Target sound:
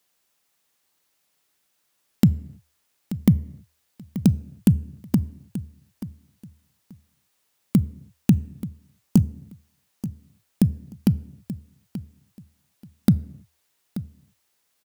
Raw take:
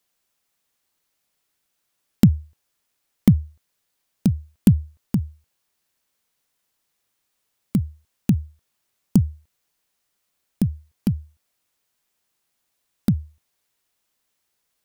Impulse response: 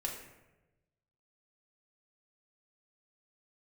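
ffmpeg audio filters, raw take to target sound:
-filter_complex "[0:a]lowshelf=f=63:g=-10,alimiter=limit=-8.5dB:level=0:latency=1:release=222,aecho=1:1:882|1764:0.2|0.0399,asplit=2[a][b];[1:a]atrim=start_sample=2205,afade=t=out:st=0.38:d=0.01,atrim=end_sample=17199[c];[b][c]afir=irnorm=-1:irlink=0,volume=-18dB[d];[a][d]amix=inputs=2:normalize=0,volume=3dB"

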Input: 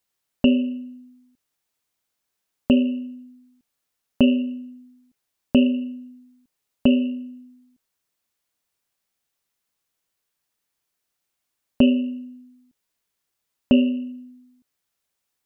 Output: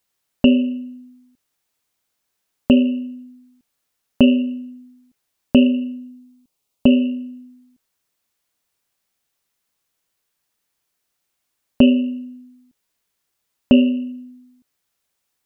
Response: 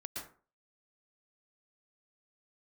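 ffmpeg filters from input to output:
-filter_complex "[0:a]asettb=1/sr,asplit=3[a][b][c];[a]atrim=end=5.984[d];[b]atrim=start=5.98:end=6.92,asetpts=PTS-STARTPTS,afade=t=in:d=0.004:c=qsin,afade=t=out:st=0.936:d=0.004:c=qsin,equalizer=f=1.7k:t=o:w=0.55:g=-10[e];[c]atrim=start=6.916[f];[d][e]acrossfade=d=0.004:c1=hsin:c2=qsin[g];[g][f]acrossfade=d=0.004:c1=qsin:c2=hsin,volume=4dB"

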